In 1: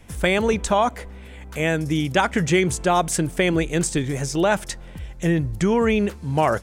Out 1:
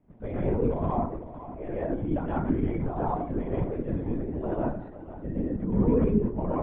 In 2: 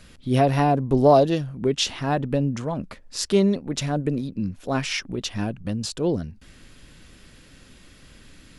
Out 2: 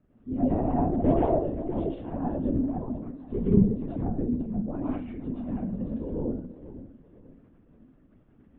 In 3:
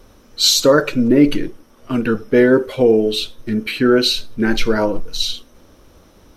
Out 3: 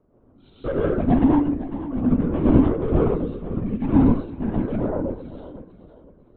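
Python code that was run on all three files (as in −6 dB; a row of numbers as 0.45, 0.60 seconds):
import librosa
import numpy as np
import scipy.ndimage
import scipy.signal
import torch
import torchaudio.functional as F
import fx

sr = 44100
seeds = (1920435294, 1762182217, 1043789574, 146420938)

y = fx.ladder_bandpass(x, sr, hz=290.0, resonance_pct=50)
y = fx.peak_eq(y, sr, hz=320.0, db=-11.0, octaves=0.67)
y = np.clip(10.0 ** (24.5 / 20.0) * y, -1.0, 1.0) / 10.0 ** (24.5 / 20.0)
y = fx.vibrato(y, sr, rate_hz=0.77, depth_cents=5.0)
y = fx.echo_feedback(y, sr, ms=501, feedback_pct=31, wet_db=-13.5)
y = fx.rev_plate(y, sr, seeds[0], rt60_s=0.58, hf_ratio=0.6, predelay_ms=105, drr_db=-6.0)
y = fx.lpc_vocoder(y, sr, seeds[1], excitation='whisper', order=16)
y = y * librosa.db_to_amplitude(3.0)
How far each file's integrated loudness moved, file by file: −7.5, −5.0, −5.5 LU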